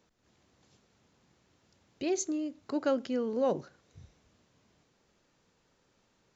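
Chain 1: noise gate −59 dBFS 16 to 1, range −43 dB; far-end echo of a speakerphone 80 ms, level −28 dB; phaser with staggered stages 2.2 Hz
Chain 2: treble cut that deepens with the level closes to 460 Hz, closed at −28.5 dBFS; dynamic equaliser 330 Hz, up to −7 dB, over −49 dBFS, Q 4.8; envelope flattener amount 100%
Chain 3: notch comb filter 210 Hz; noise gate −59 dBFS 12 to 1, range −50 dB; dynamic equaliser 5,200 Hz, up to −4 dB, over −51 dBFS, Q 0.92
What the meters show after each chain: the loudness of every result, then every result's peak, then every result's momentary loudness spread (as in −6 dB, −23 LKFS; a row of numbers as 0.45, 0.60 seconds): −34.5, −30.5, −33.5 LKFS; −19.0, −14.0, −19.0 dBFS; 8, 2, 6 LU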